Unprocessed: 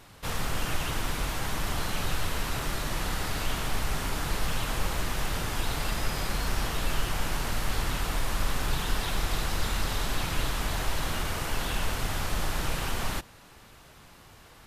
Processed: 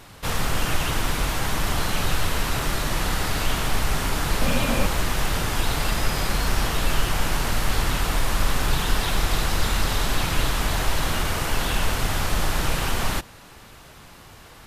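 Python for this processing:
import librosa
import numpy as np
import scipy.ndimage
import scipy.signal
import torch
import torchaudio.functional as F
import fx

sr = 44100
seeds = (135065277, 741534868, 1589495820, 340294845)

y = fx.small_body(x, sr, hz=(240.0, 540.0, 2400.0), ring_ms=45, db=12, at=(4.41, 4.86))
y = y * librosa.db_to_amplitude(6.5)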